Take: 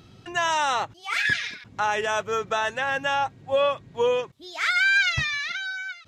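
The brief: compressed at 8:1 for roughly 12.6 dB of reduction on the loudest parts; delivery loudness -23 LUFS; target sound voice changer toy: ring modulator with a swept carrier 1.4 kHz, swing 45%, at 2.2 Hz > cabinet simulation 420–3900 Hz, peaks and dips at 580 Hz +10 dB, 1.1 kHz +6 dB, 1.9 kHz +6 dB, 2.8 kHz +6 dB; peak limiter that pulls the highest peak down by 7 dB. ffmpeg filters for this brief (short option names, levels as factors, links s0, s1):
-af "acompressor=threshold=0.0282:ratio=8,alimiter=level_in=1.41:limit=0.0631:level=0:latency=1,volume=0.708,aeval=exprs='val(0)*sin(2*PI*1400*n/s+1400*0.45/2.2*sin(2*PI*2.2*n/s))':c=same,highpass=420,equalizer=f=580:t=q:w=4:g=10,equalizer=f=1100:t=q:w=4:g=6,equalizer=f=1900:t=q:w=4:g=6,equalizer=f=2800:t=q:w=4:g=6,lowpass=f=3900:w=0.5412,lowpass=f=3900:w=1.3066,volume=3.98"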